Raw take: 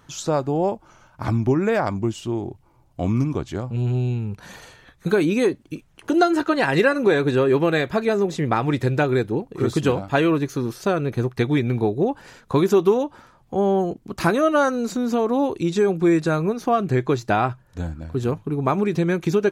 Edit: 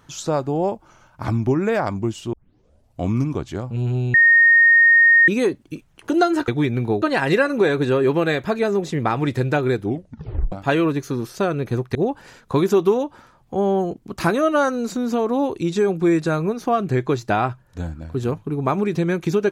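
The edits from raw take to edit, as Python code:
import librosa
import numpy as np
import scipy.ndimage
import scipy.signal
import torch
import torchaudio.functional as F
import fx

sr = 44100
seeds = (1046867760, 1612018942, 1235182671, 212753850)

y = fx.edit(x, sr, fx.tape_start(start_s=2.33, length_s=0.67),
    fx.bleep(start_s=4.14, length_s=1.14, hz=1850.0, db=-9.0),
    fx.tape_stop(start_s=9.27, length_s=0.71),
    fx.move(start_s=11.41, length_s=0.54, to_s=6.48), tone=tone)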